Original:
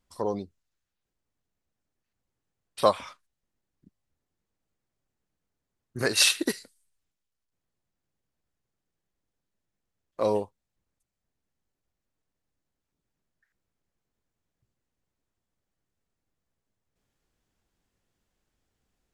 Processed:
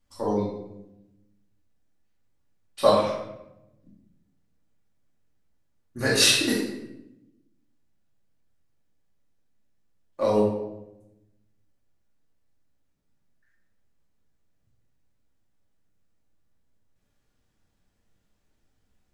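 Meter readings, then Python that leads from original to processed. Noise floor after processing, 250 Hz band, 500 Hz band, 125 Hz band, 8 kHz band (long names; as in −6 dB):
−71 dBFS, +7.0 dB, +5.0 dB, +7.0 dB, +2.0 dB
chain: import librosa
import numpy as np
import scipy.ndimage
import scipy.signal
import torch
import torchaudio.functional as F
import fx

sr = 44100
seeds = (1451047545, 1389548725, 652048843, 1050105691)

y = fx.room_shoebox(x, sr, seeds[0], volume_m3=320.0, walls='mixed', distance_m=2.4)
y = y * librosa.db_to_amplitude(-3.5)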